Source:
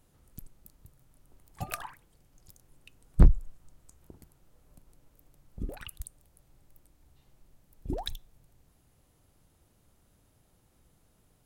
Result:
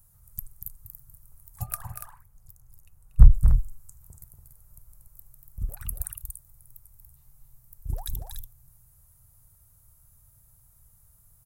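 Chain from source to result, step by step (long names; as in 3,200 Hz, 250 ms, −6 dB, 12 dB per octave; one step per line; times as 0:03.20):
drawn EQ curve 120 Hz 0 dB, 310 Hz −27 dB, 470 Hz −17 dB, 1,200 Hz −7 dB, 3,100 Hz −17 dB, 13,000 Hz +10 dB
on a send: loudspeakers that aren't time-aligned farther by 81 metres −7 dB, 98 metres −8 dB
0:01.66–0:03.33: on the sum: one half of a high-frequency compander decoder only
level +6 dB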